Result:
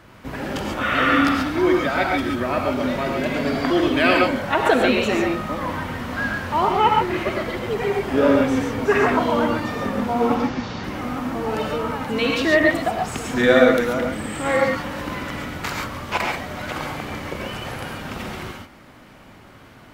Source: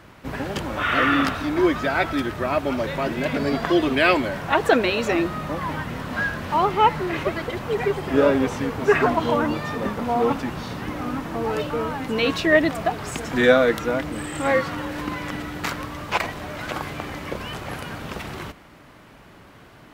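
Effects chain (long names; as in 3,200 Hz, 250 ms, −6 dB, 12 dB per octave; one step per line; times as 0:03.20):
0:10.35–0:10.84: variable-slope delta modulation 32 kbit/s
reverb whose tail is shaped and stops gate 160 ms rising, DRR 0.5 dB
level −1 dB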